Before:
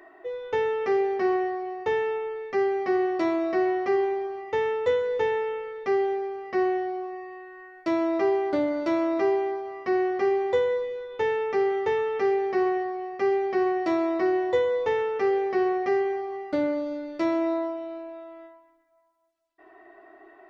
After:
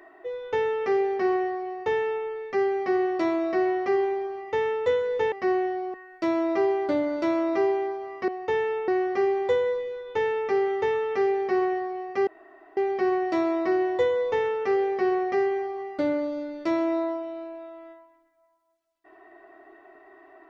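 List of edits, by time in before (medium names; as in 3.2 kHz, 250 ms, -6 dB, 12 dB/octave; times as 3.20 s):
1.66–2.26 s: copy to 9.92 s
5.32–6.43 s: delete
7.05–7.58 s: delete
13.31 s: insert room tone 0.50 s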